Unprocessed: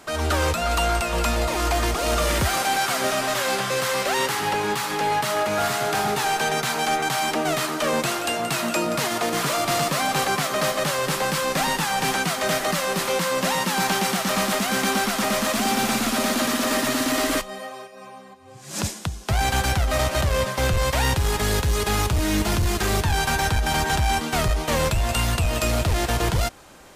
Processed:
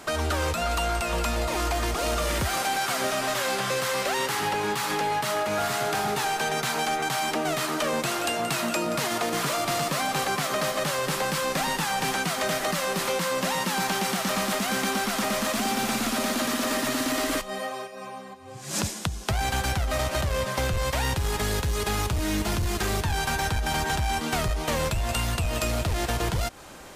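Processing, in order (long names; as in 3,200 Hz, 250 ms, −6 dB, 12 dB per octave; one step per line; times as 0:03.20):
downward compressor, threshold −27 dBFS, peak gain reduction 8.5 dB
level +3 dB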